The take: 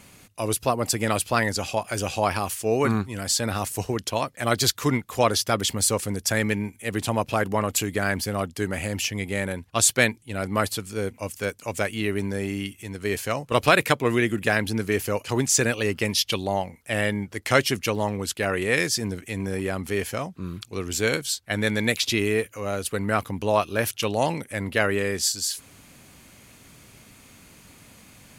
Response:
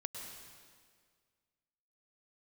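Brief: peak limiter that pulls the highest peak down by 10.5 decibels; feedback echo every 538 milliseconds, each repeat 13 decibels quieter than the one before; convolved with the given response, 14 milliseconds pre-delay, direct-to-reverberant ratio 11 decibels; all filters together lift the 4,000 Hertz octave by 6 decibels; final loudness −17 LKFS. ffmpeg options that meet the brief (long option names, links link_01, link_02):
-filter_complex "[0:a]equalizer=frequency=4000:width_type=o:gain=7.5,alimiter=limit=-10.5dB:level=0:latency=1,aecho=1:1:538|1076|1614:0.224|0.0493|0.0108,asplit=2[link_01][link_02];[1:a]atrim=start_sample=2205,adelay=14[link_03];[link_02][link_03]afir=irnorm=-1:irlink=0,volume=-10dB[link_04];[link_01][link_04]amix=inputs=2:normalize=0,volume=7.5dB"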